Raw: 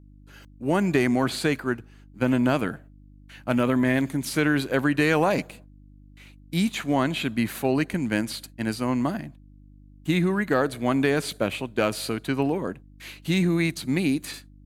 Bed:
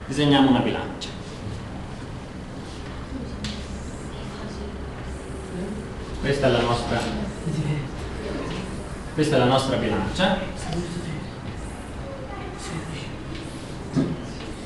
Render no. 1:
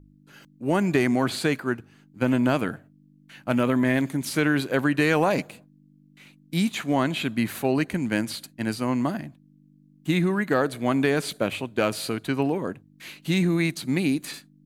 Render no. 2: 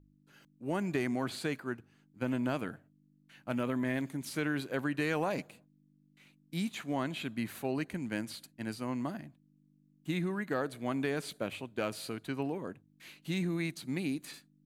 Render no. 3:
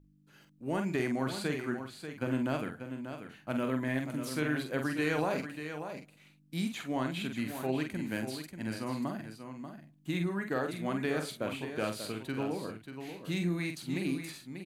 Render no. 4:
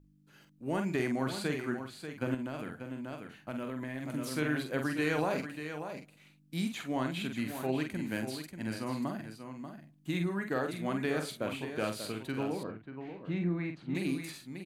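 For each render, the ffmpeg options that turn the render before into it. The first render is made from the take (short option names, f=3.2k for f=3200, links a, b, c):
-af "bandreject=f=50:t=h:w=4,bandreject=f=100:t=h:w=4"
-af "volume=-11dB"
-filter_complex "[0:a]asplit=2[a][b];[b]adelay=46,volume=-6dB[c];[a][c]amix=inputs=2:normalize=0,aecho=1:1:588:0.355"
-filter_complex "[0:a]asettb=1/sr,asplit=3[a][b][c];[a]atrim=end=2.344[d];[b]atrim=start=2.34:end=4.06,asetpts=PTS-STARTPTS,afade=t=in:d=0.004:c=qsin,afade=t=out:st=1.716:d=0.004:c=qsin,acompressor=threshold=-34dB:ratio=6:attack=3.2:release=140:knee=1:detection=peak[e];[c]atrim=start=4.056[f];[d][e]acrossfade=d=0.004:c1=hsin:c2=qsin[g];[g][f]acrossfade=d=0.004:c1=qsin:c2=hsin,asettb=1/sr,asplit=3[h][i][j];[h]atrim=end=12.634[k];[i]atrim=start=12.63:end=13.95,asetpts=PTS-STARTPTS,afade=t=in:d=0.004:c=qsin,afade=t=out:st=1.316:d=0.004:c=qsin,lowpass=1.8k[l];[j]atrim=start=13.946[m];[k][l]acrossfade=d=0.004:c1=hsin:c2=qsin[n];[n][m]acrossfade=d=0.004:c1=qsin:c2=hsin"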